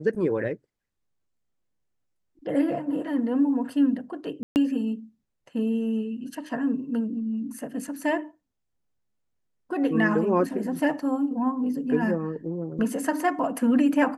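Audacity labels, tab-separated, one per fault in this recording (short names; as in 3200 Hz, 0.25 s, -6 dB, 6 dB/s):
4.430000	4.560000	gap 0.129 s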